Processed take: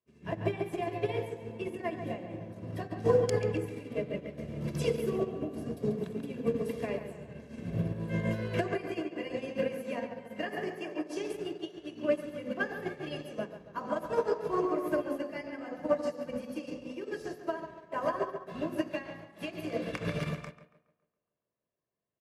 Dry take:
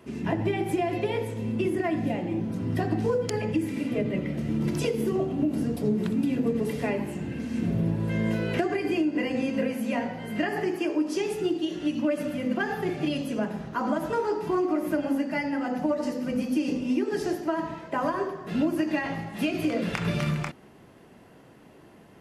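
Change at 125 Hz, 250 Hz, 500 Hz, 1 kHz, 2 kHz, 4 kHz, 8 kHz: -6.5 dB, -10.5 dB, -3.5 dB, -6.0 dB, -6.5 dB, -7.5 dB, -8.0 dB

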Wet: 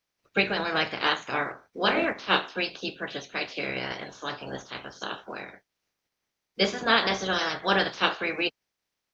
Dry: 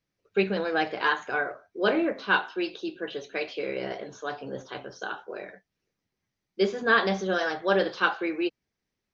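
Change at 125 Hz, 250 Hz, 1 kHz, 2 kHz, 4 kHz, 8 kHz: +1.0 dB, -2.5 dB, +1.0 dB, 0.0 dB, +7.5 dB, no reading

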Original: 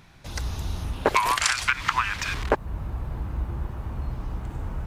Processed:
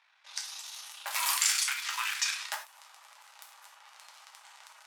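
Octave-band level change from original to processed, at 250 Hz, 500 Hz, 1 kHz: under -40 dB, -27.5 dB, -13.5 dB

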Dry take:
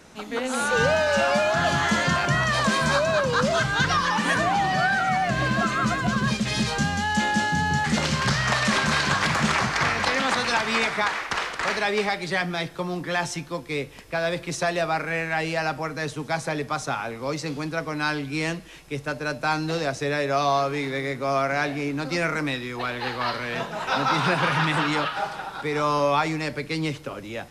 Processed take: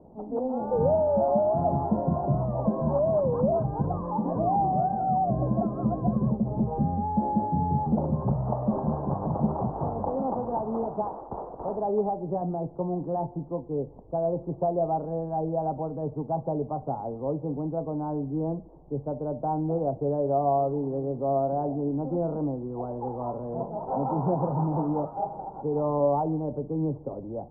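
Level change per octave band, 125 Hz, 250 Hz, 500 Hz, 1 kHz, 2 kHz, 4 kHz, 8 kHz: 0.0 dB, 0.0 dB, 0.0 dB, -4.0 dB, under -40 dB, under -40 dB, under -40 dB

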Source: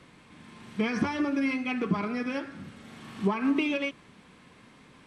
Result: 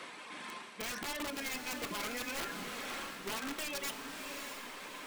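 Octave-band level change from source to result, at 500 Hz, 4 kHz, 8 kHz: -10.0 dB, +1.5 dB, no reading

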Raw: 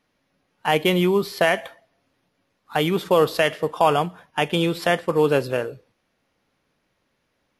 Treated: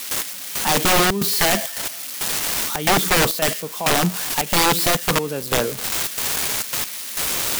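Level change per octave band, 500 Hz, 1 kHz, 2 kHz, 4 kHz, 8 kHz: -3.5 dB, +2.0 dB, +4.0 dB, +8.0 dB, +21.0 dB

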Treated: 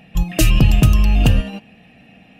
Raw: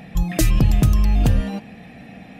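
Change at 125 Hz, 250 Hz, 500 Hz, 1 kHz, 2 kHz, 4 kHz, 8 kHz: +3.0 dB, +2.5 dB, +2.5 dB, +2.5 dB, +7.0 dB, +8.0 dB, +3.0 dB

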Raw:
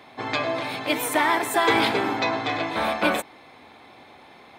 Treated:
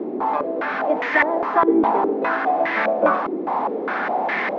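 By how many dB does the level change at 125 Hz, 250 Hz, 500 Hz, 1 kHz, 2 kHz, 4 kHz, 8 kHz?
no reading, +5.5 dB, +6.0 dB, +5.5 dB, +3.0 dB, -12.0 dB, under -25 dB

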